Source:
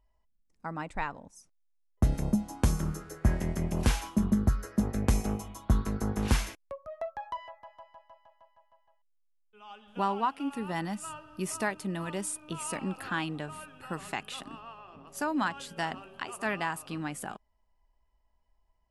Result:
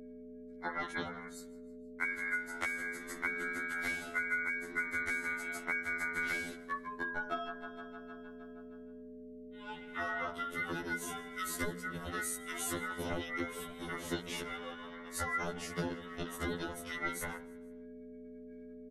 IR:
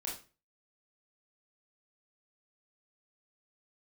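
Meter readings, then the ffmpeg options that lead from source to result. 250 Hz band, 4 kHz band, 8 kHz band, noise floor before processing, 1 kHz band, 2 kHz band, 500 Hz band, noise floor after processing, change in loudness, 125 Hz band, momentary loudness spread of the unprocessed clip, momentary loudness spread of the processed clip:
-10.5 dB, -4.0 dB, -4.0 dB, -71 dBFS, -6.0 dB, +4.5 dB, -4.0 dB, -50 dBFS, -5.0 dB, -16.5 dB, 15 LU, 16 LU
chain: -af "afftfilt=real='real(if(between(b,1,1012),(2*floor((b-1)/92)+1)*92-b,b),0)':imag='imag(if(between(b,1,1012),(2*floor((b-1)/92)+1)*92-b,b),0)*if(between(b,1,1012),-1,1)':win_size=2048:overlap=0.75,agate=range=0.0224:threshold=0.00112:ratio=3:detection=peak,asubboost=boost=6:cutoff=230,bandreject=f=66.42:t=h:w=4,bandreject=f=132.84:t=h:w=4,bandreject=f=199.26:t=h:w=4,bandreject=f=265.68:t=h:w=4,bandreject=f=332.1:t=h:w=4,bandreject=f=398.52:t=h:w=4,bandreject=f=464.94:t=h:w=4,bandreject=f=531.36:t=h:w=4,bandreject=f=597.78:t=h:w=4,bandreject=f=664.2:t=h:w=4,bandreject=f=730.62:t=h:w=4,bandreject=f=797.04:t=h:w=4,bandreject=f=863.46:t=h:w=4,bandreject=f=929.88:t=h:w=4,bandreject=f=996.3:t=h:w=4,bandreject=f=1062.72:t=h:w=4,bandreject=f=1129.14:t=h:w=4,bandreject=f=1195.56:t=h:w=4,bandreject=f=1261.98:t=h:w=4,bandreject=f=1328.4:t=h:w=4,bandreject=f=1394.82:t=h:w=4,bandreject=f=1461.24:t=h:w=4,bandreject=f=1527.66:t=h:w=4,bandreject=f=1594.08:t=h:w=4,bandreject=f=1660.5:t=h:w=4,bandreject=f=1726.92:t=h:w=4,bandreject=f=1793.34:t=h:w=4,bandreject=f=1859.76:t=h:w=4,adynamicequalizer=threshold=0.00355:dfrequency=1400:dqfactor=6.9:tfrequency=1400:tqfactor=6.9:attack=5:release=100:ratio=0.375:range=1.5:mode=cutabove:tftype=bell,acompressor=threshold=0.0158:ratio=16,aeval=exprs='val(0)+0.00251*(sin(2*PI*60*n/s)+sin(2*PI*2*60*n/s)/2+sin(2*PI*3*60*n/s)/3+sin(2*PI*4*60*n/s)/4+sin(2*PI*5*60*n/s)/5)':c=same,aeval=exprs='val(0)*sin(2*PI*310*n/s)':c=same,aecho=1:1:158|316|474:0.0794|0.0381|0.0183,afftfilt=real='re*2*eq(mod(b,4),0)':imag='im*2*eq(mod(b,4),0)':win_size=2048:overlap=0.75,volume=2.37"

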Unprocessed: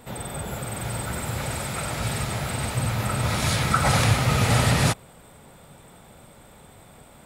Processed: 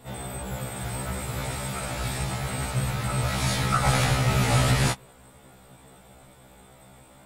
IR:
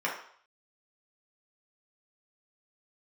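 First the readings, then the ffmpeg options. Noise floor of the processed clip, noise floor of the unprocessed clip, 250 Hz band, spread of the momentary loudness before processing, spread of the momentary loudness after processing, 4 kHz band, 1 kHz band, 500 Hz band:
-52 dBFS, -50 dBFS, -2.0 dB, 12 LU, 12 LU, -2.0 dB, -2.0 dB, -2.0 dB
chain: -af "aeval=exprs='0.447*(cos(1*acos(clip(val(0)/0.447,-1,1)))-cos(1*PI/2))+0.02*(cos(4*acos(clip(val(0)/0.447,-1,1)))-cos(4*PI/2))':c=same,afftfilt=real='re*1.73*eq(mod(b,3),0)':imag='im*1.73*eq(mod(b,3),0)':win_size=2048:overlap=0.75"

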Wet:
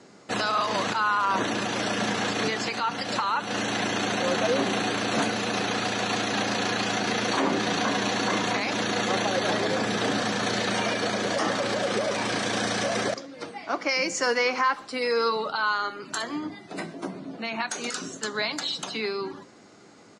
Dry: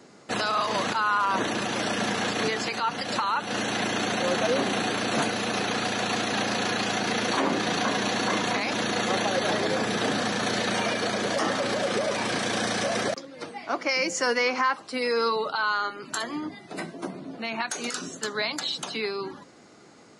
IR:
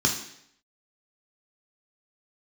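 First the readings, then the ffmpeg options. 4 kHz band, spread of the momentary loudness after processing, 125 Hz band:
0.0 dB, 8 LU, +1.0 dB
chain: -filter_complex "[0:a]lowpass=f=9600:w=0.5412,lowpass=f=9600:w=1.3066,asplit=2[s0][s1];[s1]adelay=120,highpass=300,lowpass=3400,asoftclip=type=hard:threshold=0.0631,volume=0.0891[s2];[s0][s2]amix=inputs=2:normalize=0,asplit=2[s3][s4];[1:a]atrim=start_sample=2205,adelay=9[s5];[s4][s5]afir=irnorm=-1:irlink=0,volume=0.0376[s6];[s3][s6]amix=inputs=2:normalize=0"

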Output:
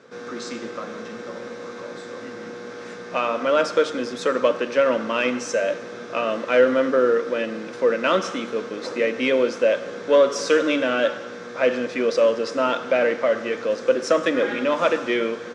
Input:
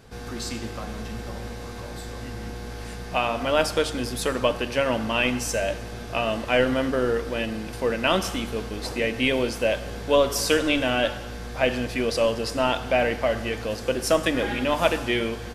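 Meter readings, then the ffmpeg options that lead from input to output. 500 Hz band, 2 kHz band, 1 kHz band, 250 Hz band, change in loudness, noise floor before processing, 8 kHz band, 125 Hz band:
+4.5 dB, +1.0 dB, +1.5 dB, +0.5 dB, +3.0 dB, -36 dBFS, -4.5 dB, under -10 dB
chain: -filter_complex "[0:a]asplit=2[s0][s1];[s1]aeval=exprs='0.133*(abs(mod(val(0)/0.133+3,4)-2)-1)':c=same,volume=0.282[s2];[s0][s2]amix=inputs=2:normalize=0,highpass=f=190:w=0.5412,highpass=f=190:w=1.3066,equalizer=f=210:t=q:w=4:g=-3,equalizer=f=520:t=q:w=4:g=7,equalizer=f=770:t=q:w=4:g=-9,equalizer=f=1300:t=q:w=4:g=6,equalizer=f=2900:t=q:w=4:g=-6,equalizer=f=4600:t=q:w=4:g=-7,lowpass=f=6200:w=0.5412,lowpass=f=6200:w=1.3066"

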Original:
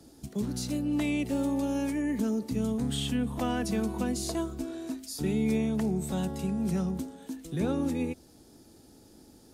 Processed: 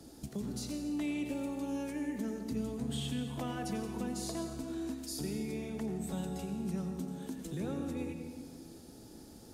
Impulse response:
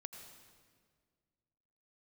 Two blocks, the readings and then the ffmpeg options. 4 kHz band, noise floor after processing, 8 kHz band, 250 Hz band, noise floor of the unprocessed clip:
-6.0 dB, -53 dBFS, -5.0 dB, -7.5 dB, -56 dBFS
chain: -filter_complex "[0:a]acompressor=threshold=0.00891:ratio=2.5[s0];[1:a]atrim=start_sample=2205[s1];[s0][s1]afir=irnorm=-1:irlink=0,volume=2.11"

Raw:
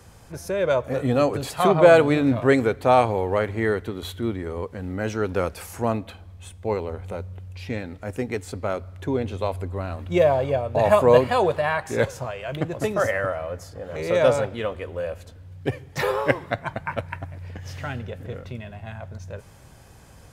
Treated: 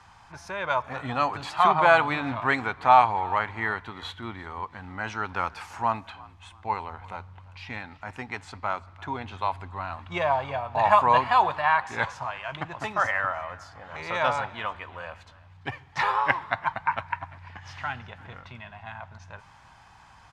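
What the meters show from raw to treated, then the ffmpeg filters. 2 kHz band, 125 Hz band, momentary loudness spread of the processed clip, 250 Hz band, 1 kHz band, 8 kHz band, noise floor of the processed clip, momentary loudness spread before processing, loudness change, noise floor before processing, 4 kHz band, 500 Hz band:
+2.0 dB, -10.5 dB, 21 LU, -12.0 dB, +4.0 dB, no reading, -53 dBFS, 19 LU, -3.0 dB, -48 dBFS, -1.0 dB, -10.5 dB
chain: -filter_complex "[0:a]lowpass=4400,lowshelf=f=670:t=q:w=3:g=-10,asplit=3[s0][s1][s2];[s1]adelay=342,afreqshift=48,volume=0.0794[s3];[s2]adelay=684,afreqshift=96,volume=0.0254[s4];[s0][s3][s4]amix=inputs=3:normalize=0"

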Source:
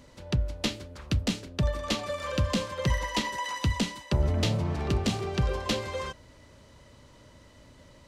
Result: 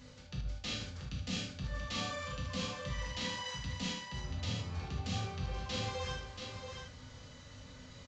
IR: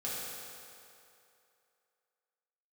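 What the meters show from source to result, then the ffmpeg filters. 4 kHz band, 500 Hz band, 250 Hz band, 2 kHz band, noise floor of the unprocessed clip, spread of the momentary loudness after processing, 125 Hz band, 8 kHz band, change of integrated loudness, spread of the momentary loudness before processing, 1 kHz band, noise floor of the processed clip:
-5.5 dB, -12.0 dB, -11.5 dB, -7.0 dB, -55 dBFS, 13 LU, -10.5 dB, -7.0 dB, -10.0 dB, 5 LU, -9.0 dB, -53 dBFS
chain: -filter_complex "[0:a]equalizer=f=440:t=o:w=2.2:g=-9,areverse,acompressor=threshold=0.01:ratio=6,areverse,aecho=1:1:79|683:0.355|0.501[s0];[1:a]atrim=start_sample=2205,atrim=end_sample=3528[s1];[s0][s1]afir=irnorm=-1:irlink=0,aresample=16000,aresample=44100,volume=1.5"

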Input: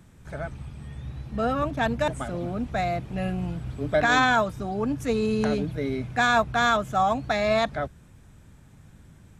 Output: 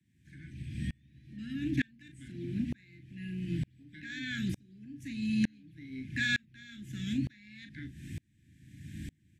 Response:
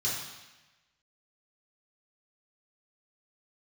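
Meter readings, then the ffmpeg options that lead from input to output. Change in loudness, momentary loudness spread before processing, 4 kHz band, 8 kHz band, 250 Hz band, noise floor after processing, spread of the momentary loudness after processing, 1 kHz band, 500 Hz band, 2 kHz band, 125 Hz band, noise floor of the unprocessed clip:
-11.5 dB, 15 LU, -9.5 dB, -11.5 dB, -6.0 dB, -68 dBFS, 19 LU, under -35 dB, -28.0 dB, -11.0 dB, -6.5 dB, -52 dBFS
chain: -filter_complex "[0:a]acrossover=split=190|1900[s0][s1][s2];[s0]alimiter=level_in=2.24:limit=0.0631:level=0:latency=1,volume=0.447[s3];[s3][s1][s2]amix=inputs=3:normalize=0,bass=f=250:g=-1,treble=f=4000:g=-6,acontrast=76,asuperstop=centerf=760:order=20:qfactor=0.57,acompressor=threshold=0.02:ratio=6,highpass=90,bandreject=f=60:t=h:w=6,bandreject=f=120:t=h:w=6,bandreject=f=180:t=h:w=6,bandreject=f=240:t=h:w=6,asplit=2[s4][s5];[s5]adelay=38,volume=0.355[s6];[s4][s6]amix=inputs=2:normalize=0,aeval=exprs='val(0)*pow(10,-35*if(lt(mod(-1.1*n/s,1),2*abs(-1.1)/1000),1-mod(-1.1*n/s,1)/(2*abs(-1.1)/1000),(mod(-1.1*n/s,1)-2*abs(-1.1)/1000)/(1-2*abs(-1.1)/1000))/20)':c=same,volume=2.82"

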